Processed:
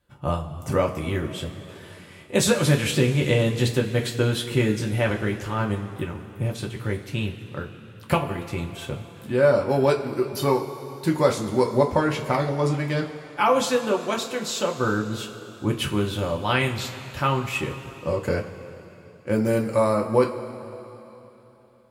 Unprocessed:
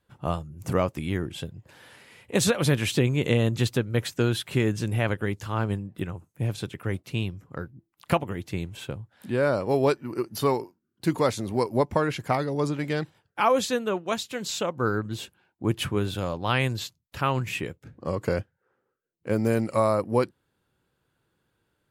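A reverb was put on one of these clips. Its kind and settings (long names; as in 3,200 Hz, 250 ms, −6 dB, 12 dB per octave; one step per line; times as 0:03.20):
coupled-rooms reverb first 0.22 s, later 3.4 s, from −18 dB, DRR 0 dB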